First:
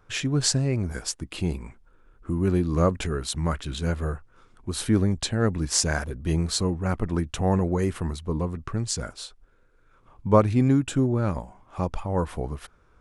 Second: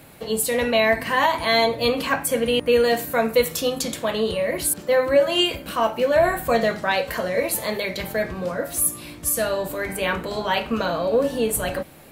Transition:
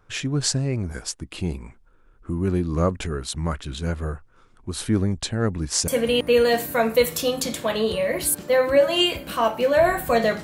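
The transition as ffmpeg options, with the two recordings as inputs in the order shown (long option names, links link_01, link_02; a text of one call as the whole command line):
ffmpeg -i cue0.wav -i cue1.wav -filter_complex "[0:a]apad=whole_dur=10.43,atrim=end=10.43,atrim=end=5.882[link_01];[1:a]atrim=start=2.268:end=6.82[link_02];[link_01][link_02]acrossfade=duration=0.004:curve1=hsin:curve2=hsin" out.wav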